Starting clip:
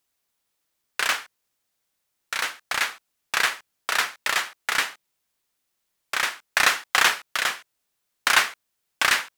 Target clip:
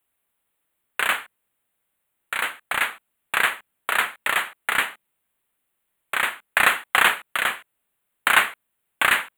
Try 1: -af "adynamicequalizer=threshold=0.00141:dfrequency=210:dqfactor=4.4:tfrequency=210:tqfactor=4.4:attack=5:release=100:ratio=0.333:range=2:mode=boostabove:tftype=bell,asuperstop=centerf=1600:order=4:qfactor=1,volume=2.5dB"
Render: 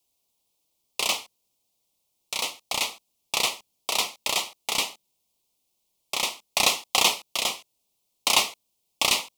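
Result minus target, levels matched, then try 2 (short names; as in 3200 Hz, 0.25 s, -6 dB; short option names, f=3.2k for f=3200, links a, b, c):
2000 Hz band -7.5 dB
-af "adynamicequalizer=threshold=0.00141:dfrequency=210:dqfactor=4.4:tfrequency=210:tqfactor=4.4:attack=5:release=100:ratio=0.333:range=2:mode=boostabove:tftype=bell,asuperstop=centerf=5400:order=4:qfactor=1,volume=2.5dB"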